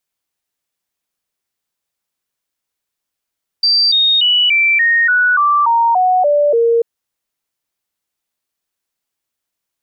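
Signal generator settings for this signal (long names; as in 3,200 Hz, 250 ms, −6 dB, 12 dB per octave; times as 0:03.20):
stepped sweep 4,680 Hz down, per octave 3, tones 11, 0.29 s, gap 0.00 s −9 dBFS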